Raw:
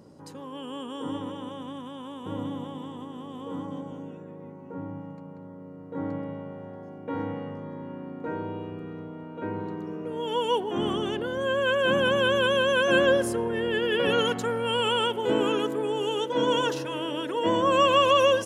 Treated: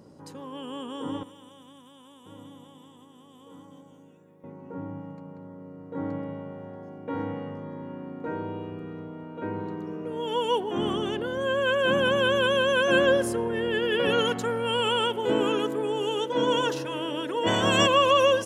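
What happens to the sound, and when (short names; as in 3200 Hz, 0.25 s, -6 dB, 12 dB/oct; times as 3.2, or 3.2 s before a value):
1.23–4.44 pre-emphasis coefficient 0.8
17.46–17.86 spectral limiter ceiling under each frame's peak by 20 dB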